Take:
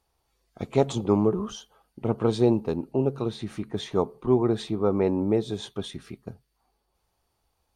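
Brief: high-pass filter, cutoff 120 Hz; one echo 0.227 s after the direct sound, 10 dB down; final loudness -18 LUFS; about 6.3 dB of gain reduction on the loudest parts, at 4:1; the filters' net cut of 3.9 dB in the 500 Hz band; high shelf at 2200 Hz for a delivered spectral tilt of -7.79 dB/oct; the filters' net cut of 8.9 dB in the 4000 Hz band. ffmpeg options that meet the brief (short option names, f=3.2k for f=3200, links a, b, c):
-af "highpass=120,equalizer=f=500:t=o:g=-5,highshelf=f=2.2k:g=-4,equalizer=f=4k:t=o:g=-7,acompressor=threshold=-25dB:ratio=4,aecho=1:1:227:0.316,volume=14.5dB"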